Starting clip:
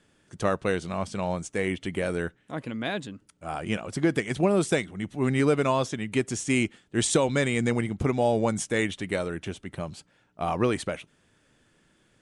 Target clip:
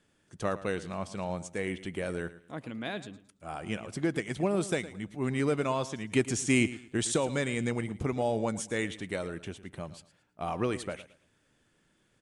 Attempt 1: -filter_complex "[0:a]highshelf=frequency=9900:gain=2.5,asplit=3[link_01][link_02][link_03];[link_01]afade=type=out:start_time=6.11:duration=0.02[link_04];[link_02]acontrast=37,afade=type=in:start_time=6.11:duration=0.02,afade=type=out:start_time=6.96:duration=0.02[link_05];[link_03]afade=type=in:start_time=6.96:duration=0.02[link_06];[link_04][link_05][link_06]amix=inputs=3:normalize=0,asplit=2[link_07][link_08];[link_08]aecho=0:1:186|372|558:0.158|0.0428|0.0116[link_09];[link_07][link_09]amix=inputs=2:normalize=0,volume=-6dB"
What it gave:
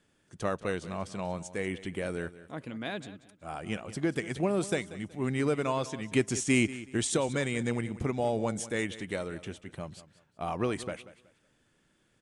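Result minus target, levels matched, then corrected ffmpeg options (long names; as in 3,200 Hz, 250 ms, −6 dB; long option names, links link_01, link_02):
echo 75 ms late
-filter_complex "[0:a]highshelf=frequency=9900:gain=2.5,asplit=3[link_01][link_02][link_03];[link_01]afade=type=out:start_time=6.11:duration=0.02[link_04];[link_02]acontrast=37,afade=type=in:start_time=6.11:duration=0.02,afade=type=out:start_time=6.96:duration=0.02[link_05];[link_03]afade=type=in:start_time=6.96:duration=0.02[link_06];[link_04][link_05][link_06]amix=inputs=3:normalize=0,asplit=2[link_07][link_08];[link_08]aecho=0:1:111|222|333:0.158|0.0428|0.0116[link_09];[link_07][link_09]amix=inputs=2:normalize=0,volume=-6dB"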